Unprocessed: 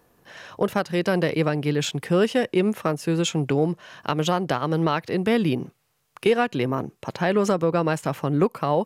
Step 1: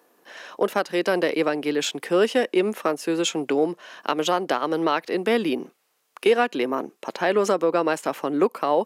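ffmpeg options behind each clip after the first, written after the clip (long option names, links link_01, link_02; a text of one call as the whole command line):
ffmpeg -i in.wav -af "highpass=frequency=260:width=0.5412,highpass=frequency=260:width=1.3066,volume=1.5dB" out.wav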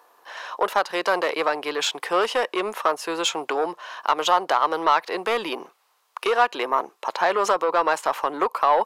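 ffmpeg -i in.wav -af "asoftclip=type=tanh:threshold=-15dB,equalizer=frequency=125:width_type=o:width=1:gain=-11,equalizer=frequency=250:width_type=o:width=1:gain=-11,equalizer=frequency=1000:width_type=o:width=1:gain=12,equalizer=frequency=4000:width_type=o:width=1:gain=4" out.wav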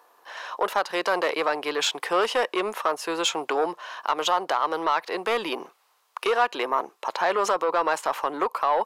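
ffmpeg -i in.wav -filter_complex "[0:a]asplit=2[link_01][link_02];[link_02]alimiter=limit=-13.5dB:level=0:latency=1:release=27,volume=2.5dB[link_03];[link_01][link_03]amix=inputs=2:normalize=0,dynaudnorm=framelen=170:gausssize=5:maxgain=3dB,volume=-9dB" out.wav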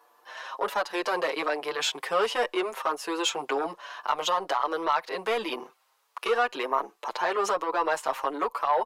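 ffmpeg -i in.wav -filter_complex "[0:a]asplit=2[link_01][link_02];[link_02]adelay=6.6,afreqshift=1.3[link_03];[link_01][link_03]amix=inputs=2:normalize=1" out.wav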